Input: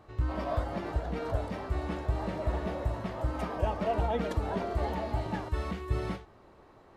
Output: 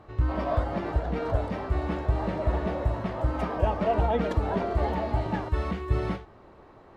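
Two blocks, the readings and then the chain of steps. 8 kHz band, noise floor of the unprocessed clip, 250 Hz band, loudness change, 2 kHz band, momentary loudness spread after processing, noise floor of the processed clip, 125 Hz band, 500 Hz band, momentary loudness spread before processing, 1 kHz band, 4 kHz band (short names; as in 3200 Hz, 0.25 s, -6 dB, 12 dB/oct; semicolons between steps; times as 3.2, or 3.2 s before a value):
n/a, -57 dBFS, +5.0 dB, +5.0 dB, +4.0 dB, 4 LU, -52 dBFS, +5.0 dB, +5.0 dB, 4 LU, +4.5 dB, +2.0 dB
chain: high shelf 5500 Hz -11.5 dB; gain +5 dB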